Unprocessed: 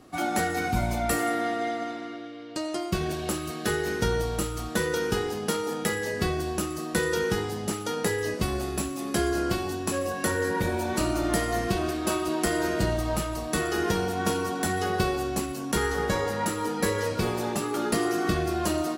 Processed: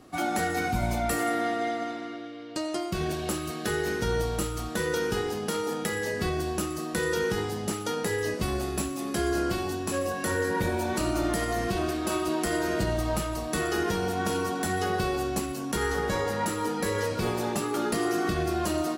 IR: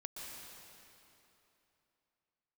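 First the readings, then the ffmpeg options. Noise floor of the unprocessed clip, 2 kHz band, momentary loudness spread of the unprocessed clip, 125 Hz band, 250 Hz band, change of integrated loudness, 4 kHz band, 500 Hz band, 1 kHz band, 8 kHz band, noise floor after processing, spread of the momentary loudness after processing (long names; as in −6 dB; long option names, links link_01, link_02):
−35 dBFS, −1.0 dB, 4 LU, −1.5 dB, −1.0 dB, −1.0 dB, −1.5 dB, −1.0 dB, −0.5 dB, −2.0 dB, −35 dBFS, 4 LU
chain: -af "alimiter=limit=-17.5dB:level=0:latency=1:release=73"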